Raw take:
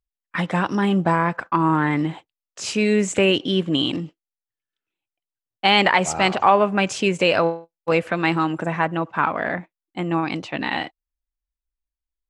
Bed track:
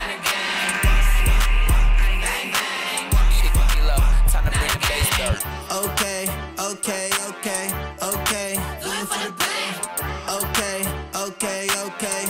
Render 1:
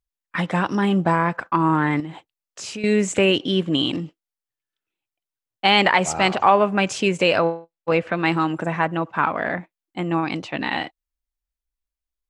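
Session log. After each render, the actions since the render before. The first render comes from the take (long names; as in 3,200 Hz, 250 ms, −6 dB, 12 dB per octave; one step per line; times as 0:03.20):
0:02.00–0:02.84: downward compressor 3 to 1, threshold −31 dBFS
0:07.38–0:08.26: high-frequency loss of the air 100 metres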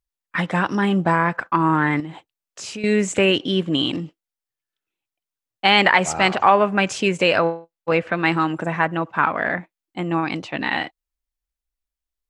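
dynamic equaliser 1,700 Hz, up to +4 dB, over −31 dBFS, Q 1.6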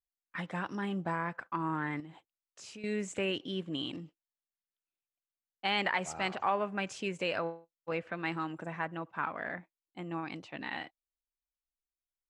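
level −16 dB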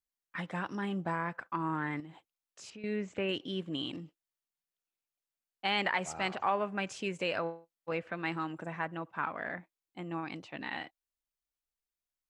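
0:02.70–0:03.29: high-frequency loss of the air 180 metres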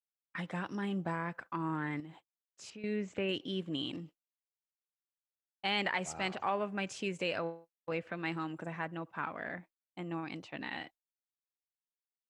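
dynamic equaliser 1,100 Hz, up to −4 dB, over −43 dBFS, Q 0.72
downward expander −50 dBFS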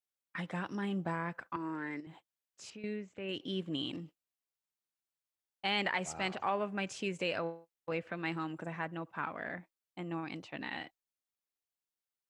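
0:01.56–0:02.07: loudspeaker in its box 290–7,800 Hz, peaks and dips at 390 Hz +3 dB, 780 Hz −8 dB, 1,200 Hz −8 dB, 3,300 Hz −10 dB, 5,100 Hz +6 dB
0:02.77–0:03.48: duck −12.5 dB, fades 0.34 s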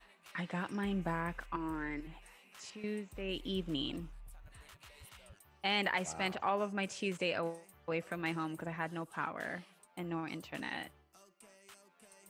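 mix in bed track −36 dB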